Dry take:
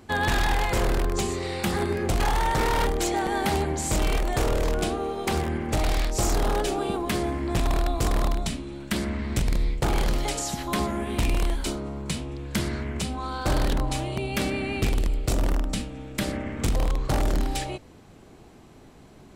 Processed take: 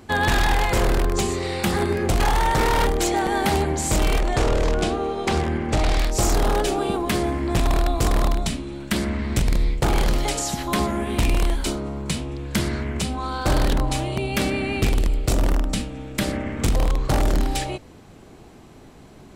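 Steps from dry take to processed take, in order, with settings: 4.20–5.99 s: low-pass 7.6 kHz 12 dB/octave; trim +4 dB

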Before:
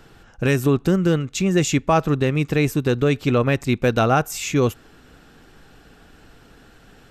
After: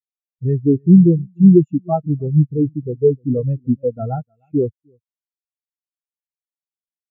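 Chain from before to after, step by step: treble shelf 6.6 kHz -6 dB; on a send: delay 304 ms -11.5 dB; on the sum: waveshaping leveller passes 2; spectral contrast expander 4:1; trim +4 dB

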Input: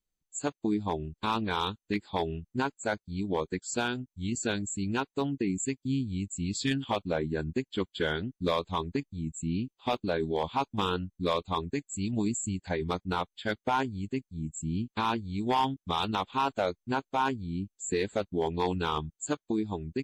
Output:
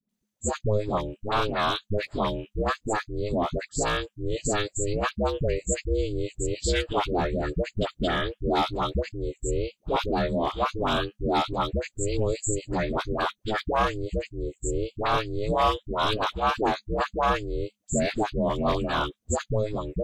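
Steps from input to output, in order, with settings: ring modulator 210 Hz; phase dispersion highs, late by 92 ms, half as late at 760 Hz; trim +7.5 dB

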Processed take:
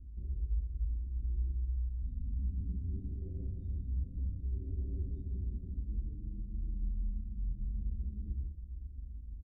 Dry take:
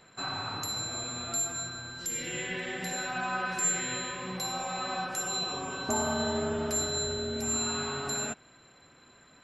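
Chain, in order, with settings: rattle on loud lows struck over -38 dBFS, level -26 dBFS; inverse Chebyshev low-pass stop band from 1.6 kHz, stop band 60 dB; resonant low shelf 170 Hz +13.5 dB, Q 3; de-hum 146.3 Hz, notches 8; reverse; compression 6:1, threshold -35 dBFS, peak gain reduction 14 dB; reverse; peak limiter -37.5 dBFS, peak gain reduction 9.5 dB; pitch shift -12 st; reverberation RT60 0.40 s, pre-delay 123 ms, DRR 4 dB; trim +5 dB

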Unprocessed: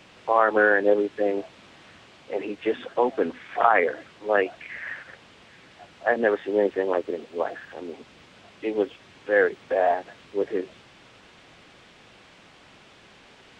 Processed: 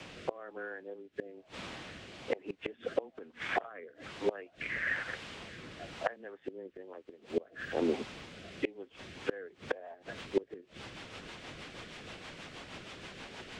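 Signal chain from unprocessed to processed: rotary cabinet horn 1.1 Hz, later 6.3 Hz, at 8.84 s; frequency shift -14 Hz; inverted gate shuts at -24 dBFS, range -30 dB; trim +7 dB

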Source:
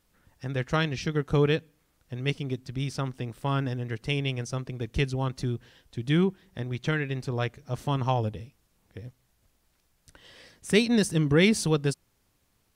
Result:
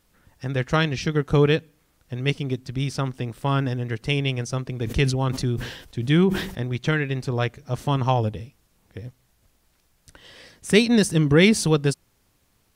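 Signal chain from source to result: 4.69–6.77 s: decay stretcher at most 73 dB/s; trim +5 dB

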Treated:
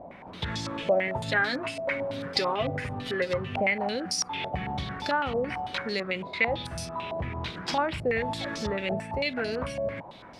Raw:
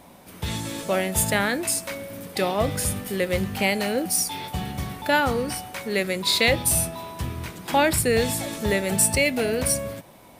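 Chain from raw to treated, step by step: compression 2.5:1, threshold -32 dBFS, peak gain reduction 11.5 dB; 1.07–3.60 s: comb 7.5 ms, depth 66%; step-sequenced low-pass 9 Hz 660–5100 Hz

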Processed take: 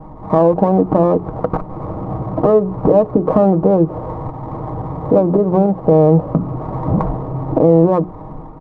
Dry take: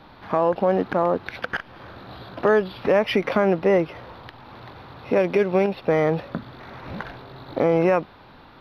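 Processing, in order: level rider gain up to 6 dB; tilt EQ -2.5 dB/octave; compression 6:1, threshold -16 dBFS, peak gain reduction 9.5 dB; steep low-pass 1.2 kHz 72 dB/octave; hum notches 60/120/180/240/300/360/420 Hz; comb 6.4 ms, depth 50%; loudness maximiser +9 dB; sliding maximum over 3 samples; trim -1 dB

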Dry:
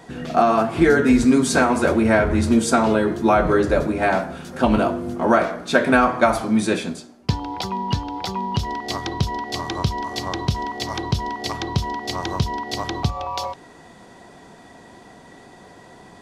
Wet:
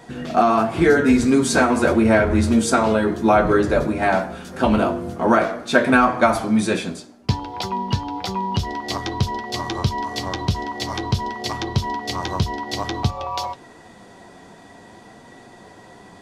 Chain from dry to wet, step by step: flange 0.52 Hz, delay 8.2 ms, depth 2.8 ms, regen -44%; trim +4.5 dB

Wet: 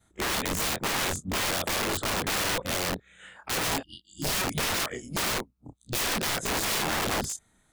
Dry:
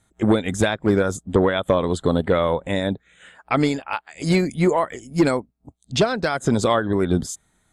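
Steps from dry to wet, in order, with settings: short-time spectra conjugated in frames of 65 ms; spectral selection erased 3.83–4.30 s, 350–2800 Hz; integer overflow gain 24.5 dB; trim +1.5 dB

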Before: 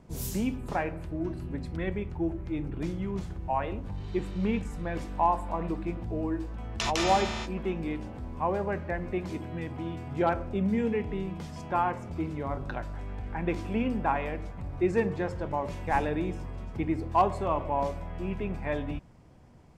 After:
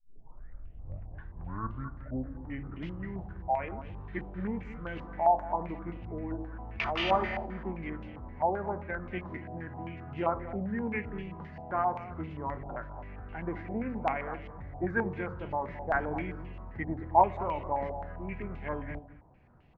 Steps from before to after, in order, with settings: tape start-up on the opening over 2.79 s; formant shift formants -2 st; on a send: delay 217 ms -13 dB; on the sum: step-sequenced low-pass 7.6 Hz 760–2800 Hz; trim -6.5 dB

